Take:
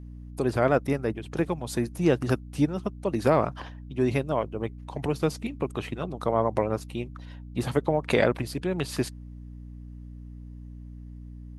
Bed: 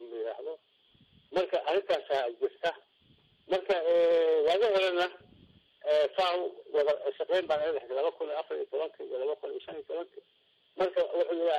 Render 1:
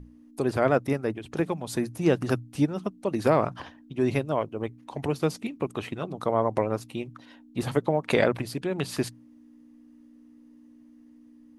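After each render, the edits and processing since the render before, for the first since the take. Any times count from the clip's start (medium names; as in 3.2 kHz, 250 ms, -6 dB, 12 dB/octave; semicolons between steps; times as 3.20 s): hum notches 60/120/180 Hz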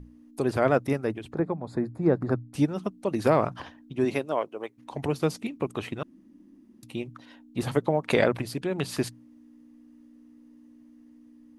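1.33–2.54 s: boxcar filter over 15 samples; 4.04–4.77 s: high-pass 200 Hz -> 540 Hz; 6.03–6.83 s: room tone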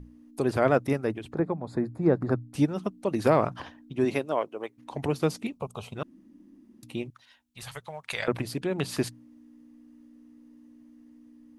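5.52–5.95 s: static phaser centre 760 Hz, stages 4; 7.10–8.28 s: amplifier tone stack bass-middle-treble 10-0-10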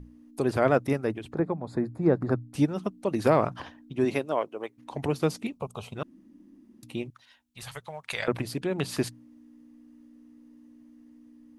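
no audible change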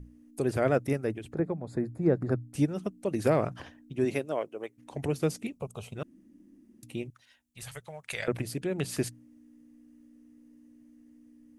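ten-band graphic EQ 250 Hz -3 dB, 1 kHz -9 dB, 4 kHz -6 dB, 8 kHz +3 dB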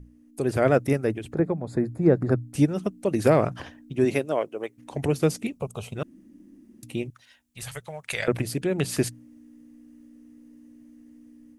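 level rider gain up to 6 dB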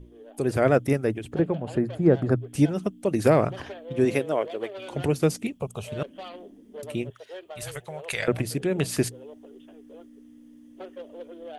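add bed -12.5 dB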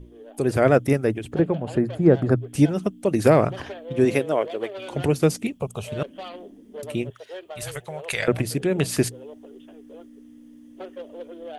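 trim +3 dB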